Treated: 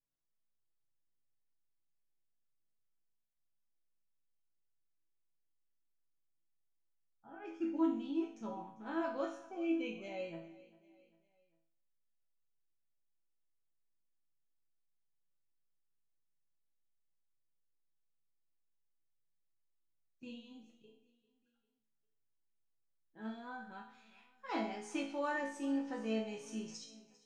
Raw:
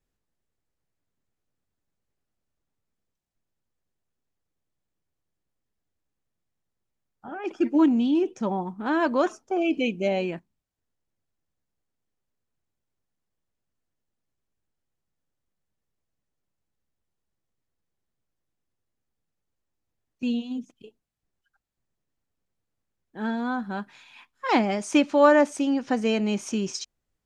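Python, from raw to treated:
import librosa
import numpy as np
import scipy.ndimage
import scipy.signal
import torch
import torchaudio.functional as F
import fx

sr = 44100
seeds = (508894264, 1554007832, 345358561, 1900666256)

y = fx.resonator_bank(x, sr, root=45, chord='major', decay_s=0.55)
y = fx.echo_feedback(y, sr, ms=398, feedback_pct=46, wet_db=-20)
y = y * 10.0 ** (1.0 / 20.0)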